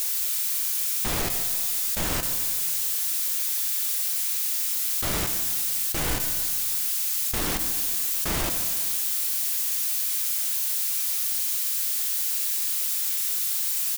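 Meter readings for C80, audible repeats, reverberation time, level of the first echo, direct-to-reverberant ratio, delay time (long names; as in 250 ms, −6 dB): 7.5 dB, 1, 2.1 s, −13.5 dB, 6.0 dB, 143 ms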